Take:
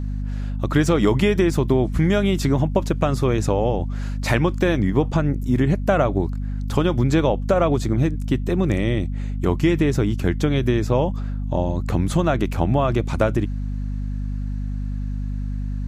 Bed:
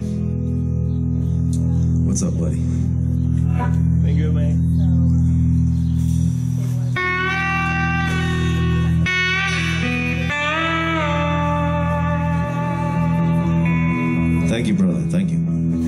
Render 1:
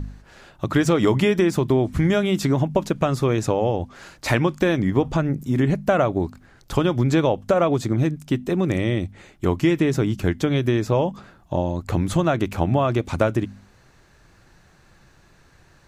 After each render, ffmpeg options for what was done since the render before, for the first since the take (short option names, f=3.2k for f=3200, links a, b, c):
-af "bandreject=f=50:t=h:w=4,bandreject=f=100:t=h:w=4,bandreject=f=150:t=h:w=4,bandreject=f=200:t=h:w=4,bandreject=f=250:t=h:w=4"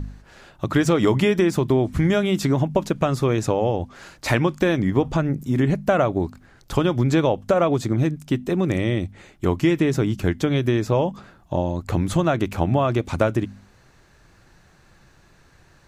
-af anull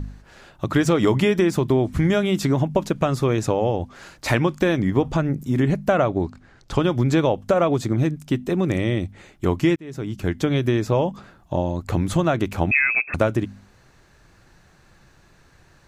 -filter_complex "[0:a]asettb=1/sr,asplit=3[a][b][c];[a]atrim=end=5.924[d];[b]atrim=start=5.92:end=6.83,asetpts=PTS-STARTPTS,afade=t=in:d=0.004:c=qsin,afade=t=out:st=0.906:d=0.004:c=qsin,lowpass=7.1k[e];[c]atrim=start=6.826[f];[d][e]acrossfade=d=0.004:c1=hsin:c2=qsin[g];[g][f]acrossfade=d=0.004:c1=qsin:c2=hsin,asettb=1/sr,asplit=3[h][i][j];[h]atrim=end=12.714[k];[i]atrim=start=12.71:end=13.14,asetpts=PTS-STARTPTS,afade=t=in:d=0.004:c=qsin,afade=t=out:st=0.426:d=0.004:c=qsin,lowpass=f=2.3k:t=q:w=0.5098,lowpass=f=2.3k:t=q:w=0.6013,lowpass=f=2.3k:t=q:w=0.9,lowpass=f=2.3k:t=q:w=2.563,afreqshift=-2700[l];[j]atrim=start=13.136[m];[k][l]acrossfade=d=0.004:c1=hsin:c2=qsin[n];[n][m]acrossfade=d=0.004:c1=qsin:c2=hsin,asplit=2[o][p];[o]atrim=end=9.76,asetpts=PTS-STARTPTS,afade=t=out:st=9.756:d=0.004:c=hsin[q];[p]atrim=start=9.76,asetpts=PTS-STARTPTS,afade=t=in:d=0.67[r];[q][r]concat=n=2:v=0:a=1"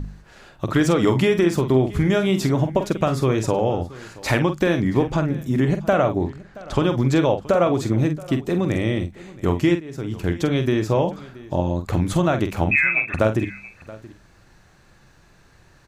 -filter_complex "[0:a]asplit=2[a][b];[b]adelay=46,volume=-8.5dB[c];[a][c]amix=inputs=2:normalize=0,aecho=1:1:676:0.1"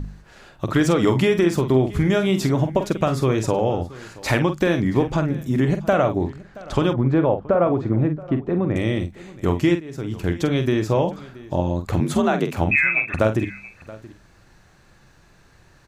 -filter_complex "[0:a]asettb=1/sr,asplit=3[a][b][c];[a]atrim=end=6.934[d];[b]atrim=start=6.93:end=8.76,asetpts=PTS-STARTPTS,afade=t=in:d=0.004:c=qsin,afade=t=out:st=1.826:d=0.004:c=qsin,lowpass=1.5k[e];[c]atrim=start=8.756[f];[d][e]acrossfade=d=0.004:c1=hsin:c2=qsin[g];[g][f]acrossfade=d=0.004:c1=qsin:c2=hsin,asettb=1/sr,asplit=3[h][i][j];[h]atrim=end=12.004[k];[i]atrim=start=12:end=12.56,asetpts=PTS-STARTPTS,afade=t=in:d=0.004:c=qsin,afade=t=out:st=0.556:d=0.004:c=qsin,afreqshift=53[l];[j]atrim=start=12.556[m];[k][l]acrossfade=d=0.004:c1=hsin:c2=qsin[n];[n][m]acrossfade=d=0.004:c1=qsin:c2=hsin"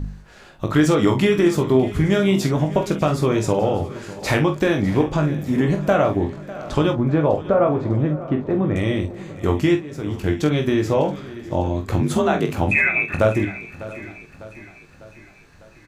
-filter_complex "[0:a]asplit=2[a][b];[b]adelay=20,volume=-6dB[c];[a][c]amix=inputs=2:normalize=0,aecho=1:1:600|1200|1800|2400|3000:0.141|0.0763|0.0412|0.0222|0.012"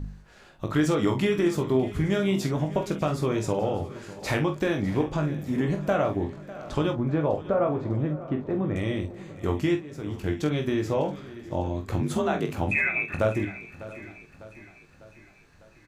-af "volume=-7dB"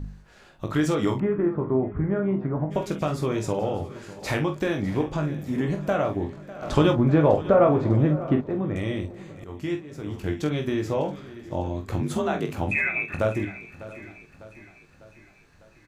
-filter_complex "[0:a]asplit=3[a][b][c];[a]afade=t=out:st=1.18:d=0.02[d];[b]lowpass=f=1.5k:w=0.5412,lowpass=f=1.5k:w=1.3066,afade=t=in:st=1.18:d=0.02,afade=t=out:st=2.7:d=0.02[e];[c]afade=t=in:st=2.7:d=0.02[f];[d][e][f]amix=inputs=3:normalize=0,asettb=1/sr,asplit=3[g][h][i];[g]atrim=end=6.624[j];[h]atrim=start=6.62:end=8.41,asetpts=PTS-STARTPTS,afade=t=in:d=0.004:c=qsin,afade=t=out:st=1.786:d=0.004:c=qsin,acontrast=76[k];[i]atrim=start=8.406[l];[j][k]acrossfade=d=0.004:c1=hsin:c2=qsin[m];[m][l]acrossfade=d=0.004:c1=qsin:c2=hsin,asplit=2[n][o];[n]atrim=end=9.44,asetpts=PTS-STARTPTS,afade=t=out:st=9.436:d=0.004:c=hsin:silence=0.112202[p];[o]atrim=start=9.44,asetpts=PTS-STARTPTS,afade=t=in:d=0.47:silence=0.112202[q];[p][q]concat=n=2:v=0:a=1"